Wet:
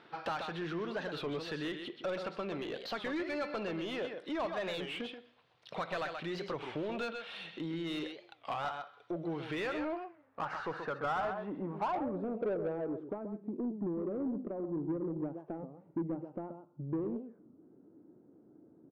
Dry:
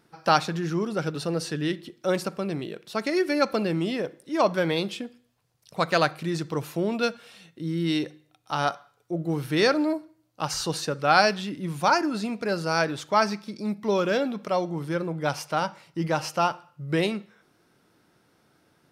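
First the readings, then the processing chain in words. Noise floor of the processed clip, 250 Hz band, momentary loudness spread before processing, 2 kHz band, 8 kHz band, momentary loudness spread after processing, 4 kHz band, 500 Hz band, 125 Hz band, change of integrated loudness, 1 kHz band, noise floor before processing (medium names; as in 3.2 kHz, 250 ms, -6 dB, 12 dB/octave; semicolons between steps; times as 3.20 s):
-64 dBFS, -9.5 dB, 10 LU, -13.0 dB, under -20 dB, 8 LU, -13.0 dB, -11.0 dB, -13.5 dB, -11.5 dB, -13.0 dB, -66 dBFS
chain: compression 4:1, threshold -37 dBFS, peak gain reduction 19.5 dB; tone controls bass -3 dB, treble +3 dB; low-pass sweep 3.6 kHz -> 300 Hz, 9.34–13.29 s; peaking EQ 5.1 kHz -4.5 dB 0.94 oct; delay 130 ms -9.5 dB; overdrive pedal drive 16 dB, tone 1.3 kHz, clips at -27 dBFS; warped record 33 1/3 rpm, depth 250 cents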